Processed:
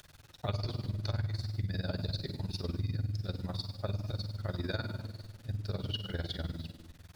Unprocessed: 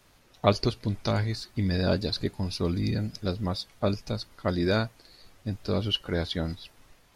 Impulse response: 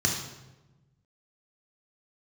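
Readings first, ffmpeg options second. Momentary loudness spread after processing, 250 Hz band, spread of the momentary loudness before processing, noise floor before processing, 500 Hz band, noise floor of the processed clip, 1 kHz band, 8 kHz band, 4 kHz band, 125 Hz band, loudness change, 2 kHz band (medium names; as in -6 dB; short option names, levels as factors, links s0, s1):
6 LU, -12.0 dB, 9 LU, -60 dBFS, -13.5 dB, -58 dBFS, -13.0 dB, no reading, -8.5 dB, -4.5 dB, -8.0 dB, -9.5 dB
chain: -filter_complex "[0:a]acompressor=mode=upward:threshold=0.00891:ratio=2.5,asplit=2[s0][s1];[1:a]atrim=start_sample=2205,asetrate=34398,aresample=44100[s2];[s1][s2]afir=irnorm=-1:irlink=0,volume=0.158[s3];[s0][s3]amix=inputs=2:normalize=0,tremolo=f=20:d=0.857,acrusher=bits=8:mix=0:aa=0.5,bandreject=f=53.94:t=h:w=4,bandreject=f=107.88:t=h:w=4,bandreject=f=161.82:t=h:w=4,acompressor=threshold=0.0562:ratio=4,volume=0.531"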